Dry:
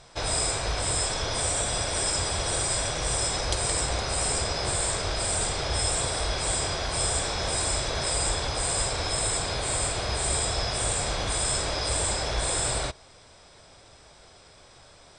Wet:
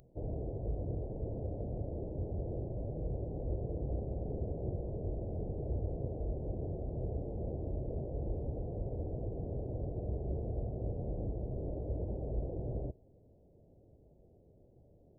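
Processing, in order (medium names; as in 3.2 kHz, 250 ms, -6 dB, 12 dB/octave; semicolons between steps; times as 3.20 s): Gaussian low-pass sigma 22 samples; tilt EQ +2.5 dB/octave; trim +5 dB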